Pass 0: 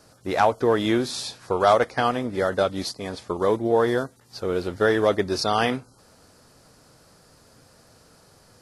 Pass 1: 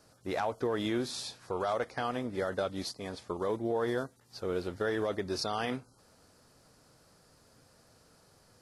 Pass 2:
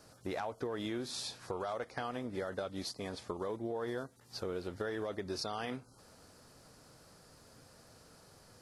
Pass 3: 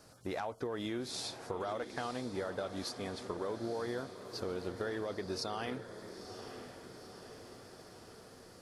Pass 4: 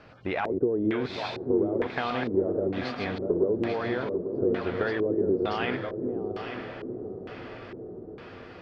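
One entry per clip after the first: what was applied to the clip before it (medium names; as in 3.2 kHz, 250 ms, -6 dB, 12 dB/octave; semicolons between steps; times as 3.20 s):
peak limiter -14 dBFS, peak gain reduction 8.5 dB; trim -8 dB
compression 3:1, threshold -41 dBFS, peak gain reduction 10.5 dB; trim +3 dB
echo that smears into a reverb 941 ms, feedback 62%, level -10.5 dB
backward echo that repeats 421 ms, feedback 48%, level -4 dB; distance through air 99 m; LFO low-pass square 1.1 Hz 390–2600 Hz; trim +8 dB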